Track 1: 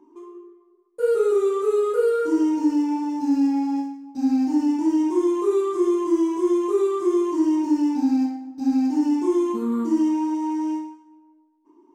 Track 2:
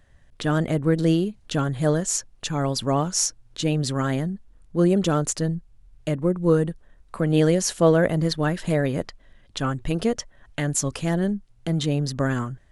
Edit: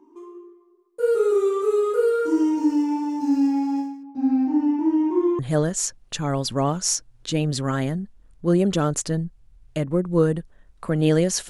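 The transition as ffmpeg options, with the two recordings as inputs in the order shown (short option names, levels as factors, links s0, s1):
-filter_complex "[0:a]asettb=1/sr,asplit=3[s0][s1][s2];[s0]atrim=end=4.034[s3];[s1]atrim=start=4.03:end=5.39,asetpts=PTS-STARTPTS,afade=t=in:d=0.004:c=qsin,afade=t=out:st=1.356:d=0.004:c=qsin,lowpass=2100[s4];[s2]atrim=start=5.386[s5];[s3][s4]acrossfade=d=0.004:c1=hsin:c2=qsin[s6];[s6][s5]acrossfade=d=0.004:c1=qsin:c2=hsin,apad=whole_dur=11.49,atrim=end=11.49,atrim=end=5.392[s7];[1:a]atrim=start=1.698:end=7.8[s8];[s7][s8]acrossfade=d=0.004:c1=hsin:c2=hsin"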